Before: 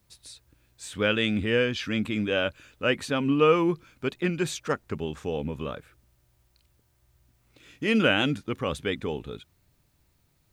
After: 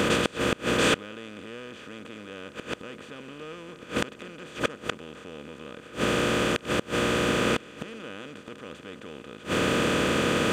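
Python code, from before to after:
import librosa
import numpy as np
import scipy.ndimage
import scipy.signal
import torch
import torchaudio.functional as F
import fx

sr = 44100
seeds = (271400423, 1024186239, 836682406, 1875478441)

y = fx.bin_compress(x, sr, power=0.2)
y = fx.gate_flip(y, sr, shuts_db=-10.0, range_db=-25)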